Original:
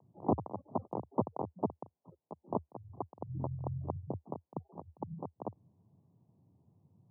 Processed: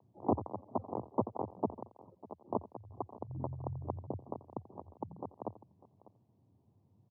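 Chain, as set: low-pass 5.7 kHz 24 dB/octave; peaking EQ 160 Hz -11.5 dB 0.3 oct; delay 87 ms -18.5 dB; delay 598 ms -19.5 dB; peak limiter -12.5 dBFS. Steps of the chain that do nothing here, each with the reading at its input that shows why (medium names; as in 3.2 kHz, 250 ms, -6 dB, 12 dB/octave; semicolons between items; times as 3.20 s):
low-pass 5.7 kHz: input has nothing above 1.1 kHz; peak limiter -12.5 dBFS: peak at its input -16.0 dBFS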